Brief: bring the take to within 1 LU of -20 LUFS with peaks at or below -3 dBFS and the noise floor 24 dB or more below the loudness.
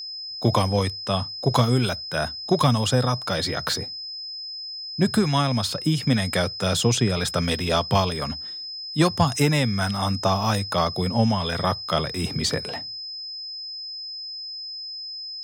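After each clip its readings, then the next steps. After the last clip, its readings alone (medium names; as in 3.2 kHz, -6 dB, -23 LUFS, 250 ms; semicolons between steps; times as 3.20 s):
steady tone 5.1 kHz; tone level -32 dBFS; loudness -24.0 LUFS; peak level -7.0 dBFS; loudness target -20.0 LUFS
-> band-stop 5.1 kHz, Q 30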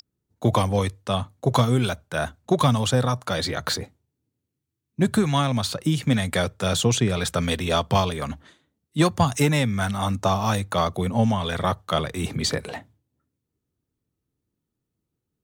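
steady tone not found; loudness -23.5 LUFS; peak level -7.5 dBFS; loudness target -20.0 LUFS
-> trim +3.5 dB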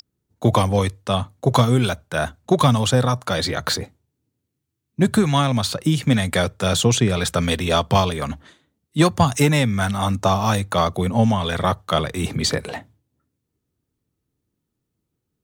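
loudness -20.0 LUFS; peak level -4.0 dBFS; noise floor -78 dBFS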